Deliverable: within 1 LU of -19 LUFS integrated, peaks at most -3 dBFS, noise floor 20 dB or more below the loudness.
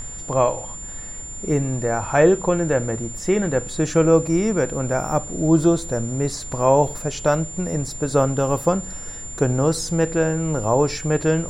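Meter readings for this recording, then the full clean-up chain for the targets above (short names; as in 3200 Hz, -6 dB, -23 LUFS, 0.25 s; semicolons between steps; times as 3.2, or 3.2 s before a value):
steady tone 7200 Hz; tone level -33 dBFS; noise floor -34 dBFS; noise floor target -41 dBFS; loudness -21.0 LUFS; peak -3.5 dBFS; loudness target -19.0 LUFS
-> notch 7200 Hz, Q 30; noise print and reduce 7 dB; gain +2 dB; limiter -3 dBFS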